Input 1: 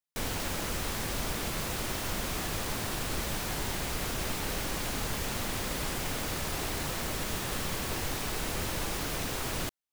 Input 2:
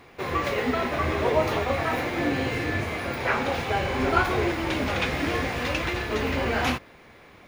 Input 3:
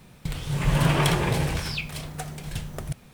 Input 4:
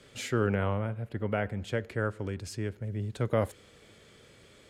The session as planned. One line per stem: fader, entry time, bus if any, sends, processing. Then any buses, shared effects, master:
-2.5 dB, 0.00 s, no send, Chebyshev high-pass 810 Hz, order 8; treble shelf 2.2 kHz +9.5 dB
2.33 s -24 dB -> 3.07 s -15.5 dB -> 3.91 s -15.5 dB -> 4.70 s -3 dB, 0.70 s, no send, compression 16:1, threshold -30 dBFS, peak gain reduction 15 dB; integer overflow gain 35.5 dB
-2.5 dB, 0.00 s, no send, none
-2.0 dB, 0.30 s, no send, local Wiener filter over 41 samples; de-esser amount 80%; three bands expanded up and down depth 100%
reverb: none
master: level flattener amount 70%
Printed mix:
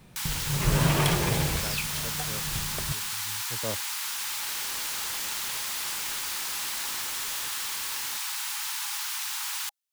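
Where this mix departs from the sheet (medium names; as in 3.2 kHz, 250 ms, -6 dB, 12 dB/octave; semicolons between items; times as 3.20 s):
stem 4 -2.0 dB -> -11.5 dB; master: missing level flattener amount 70%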